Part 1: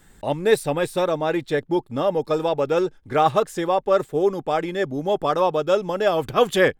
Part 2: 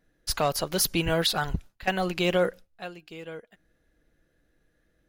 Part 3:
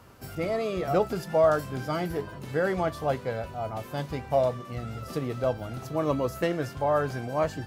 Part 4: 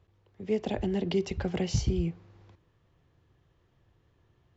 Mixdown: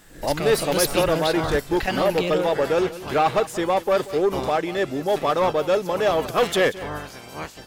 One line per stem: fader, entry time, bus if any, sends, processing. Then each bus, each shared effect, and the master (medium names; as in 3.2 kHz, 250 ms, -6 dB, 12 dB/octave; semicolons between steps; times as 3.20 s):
+2.5 dB, 0.00 s, no send, echo send -16.5 dB, bass shelf 140 Hz -11.5 dB; saturation -15.5 dBFS, distortion -14 dB
+1.0 dB, 0.00 s, no send, echo send -13.5 dB, rotary cabinet horn 0.9 Hz; swell ahead of each attack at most 110 dB/s
-5.0 dB, 0.00 s, no send, no echo send, spectral peaks clipped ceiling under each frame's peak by 26 dB; peaking EQ 1.4 kHz -3.5 dB 1.9 oct
mute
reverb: none
echo: delay 184 ms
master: none